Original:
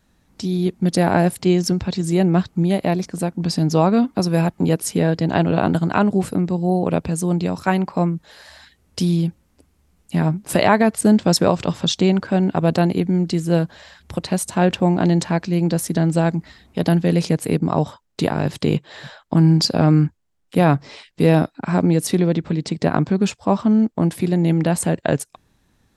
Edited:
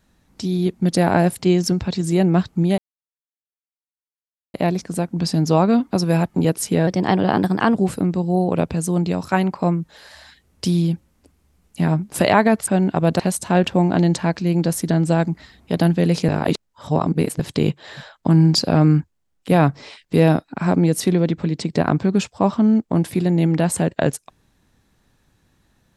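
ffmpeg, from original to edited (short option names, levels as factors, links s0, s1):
-filter_complex "[0:a]asplit=8[s0][s1][s2][s3][s4][s5][s6][s7];[s0]atrim=end=2.78,asetpts=PTS-STARTPTS,afade=t=out:st=2.776:d=0.004:c=hsin,apad=pad_dur=1.76[s8];[s1]atrim=start=2.78:end=5.114,asetpts=PTS-STARTPTS,afade=t=in:d=0.004:c=hsin[s9];[s2]atrim=start=5.11:end=6.09,asetpts=PTS-STARTPTS,asetrate=49392,aresample=44100,atrim=end_sample=38587,asetpts=PTS-STARTPTS[s10];[s3]atrim=start=6.086:end=11.022[s11];[s4]atrim=start=12.278:end=12.802[s12];[s5]atrim=start=14.258:end=17.352[s13];[s6]atrim=start=17.348:end=18.462,asetpts=PTS-STARTPTS,areverse[s14];[s7]atrim=start=18.458[s15];[s8][s9]concat=n=2:v=0:a=1[s16];[s16][s10]acrossfade=d=0.004:c1=hsin:c2=hsin[s17];[s17][s11]acrossfade=d=0.004:c1=hsin:c2=hsin[s18];[s18][s12]acrossfade=d=0.004:c1=hsin:c2=hsin[s19];[s19][s13]acrossfade=d=0.004:c1=hsin:c2=hsin[s20];[s20][s14]acrossfade=d=0.004:c1=hsin:c2=hsin[s21];[s21][s15]acrossfade=d=0.004:c1=hsin:c2=hsin"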